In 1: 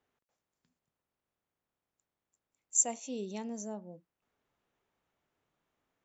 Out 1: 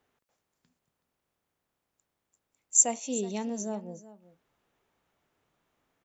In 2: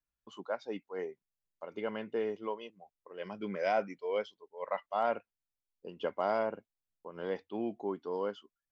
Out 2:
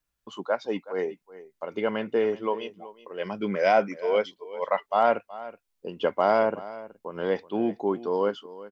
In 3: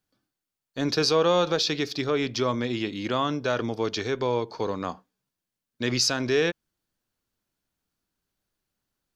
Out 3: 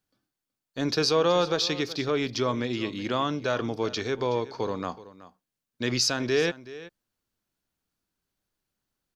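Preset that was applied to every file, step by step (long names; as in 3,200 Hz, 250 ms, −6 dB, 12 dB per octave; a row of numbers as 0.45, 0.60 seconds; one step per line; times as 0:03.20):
single-tap delay 374 ms −17 dB
loudness normalisation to −27 LKFS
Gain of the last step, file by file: +6.0, +9.5, −1.0 decibels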